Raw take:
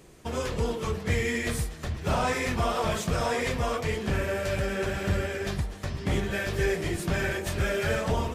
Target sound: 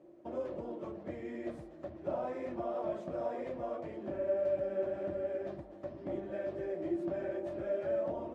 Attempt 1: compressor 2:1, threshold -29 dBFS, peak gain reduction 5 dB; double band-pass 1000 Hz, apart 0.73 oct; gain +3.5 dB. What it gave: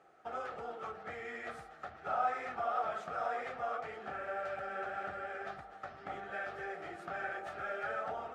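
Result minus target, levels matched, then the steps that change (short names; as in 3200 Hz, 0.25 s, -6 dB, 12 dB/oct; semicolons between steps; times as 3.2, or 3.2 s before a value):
1000 Hz band +11.0 dB
change: double band-pass 440 Hz, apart 0.73 oct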